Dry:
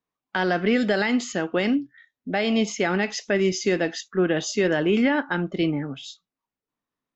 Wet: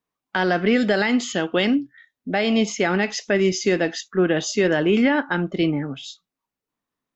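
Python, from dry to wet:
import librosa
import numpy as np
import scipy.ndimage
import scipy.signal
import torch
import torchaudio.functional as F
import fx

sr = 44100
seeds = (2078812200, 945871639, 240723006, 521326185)

y = fx.peak_eq(x, sr, hz=3300.0, db=11.0, octaves=0.35, at=(1.23, 1.65))
y = y * librosa.db_to_amplitude(2.5)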